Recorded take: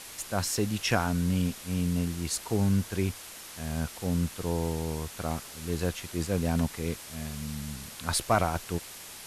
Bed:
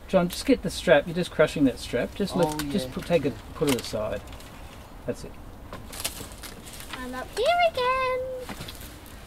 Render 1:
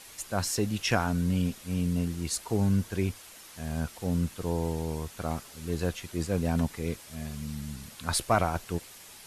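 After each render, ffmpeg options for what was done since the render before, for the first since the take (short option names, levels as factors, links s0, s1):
-af "afftdn=nr=6:nf=-45"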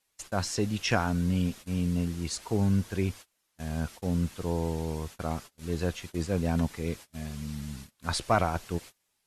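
-filter_complex "[0:a]agate=range=0.0398:threshold=0.00891:ratio=16:detection=peak,acrossover=split=8000[s0][s1];[s1]acompressor=threshold=0.00178:ratio=4:attack=1:release=60[s2];[s0][s2]amix=inputs=2:normalize=0"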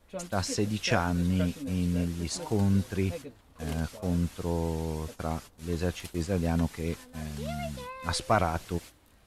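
-filter_complex "[1:a]volume=0.133[s0];[0:a][s0]amix=inputs=2:normalize=0"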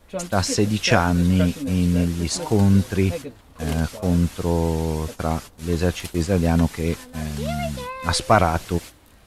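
-af "volume=2.82"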